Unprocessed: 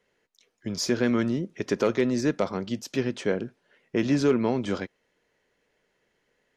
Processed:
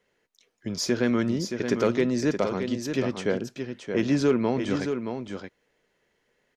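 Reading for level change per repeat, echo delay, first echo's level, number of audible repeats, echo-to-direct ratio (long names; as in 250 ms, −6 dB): repeats not evenly spaced, 623 ms, −7.0 dB, 1, −7.0 dB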